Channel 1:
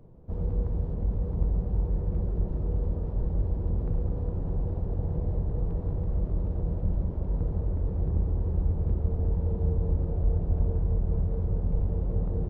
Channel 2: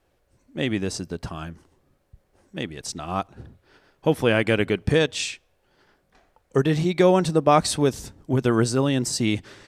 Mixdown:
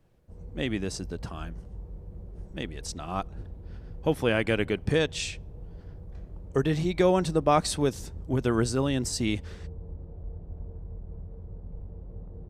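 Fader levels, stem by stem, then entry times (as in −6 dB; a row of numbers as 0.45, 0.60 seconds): −14.0, −5.0 decibels; 0.00, 0.00 seconds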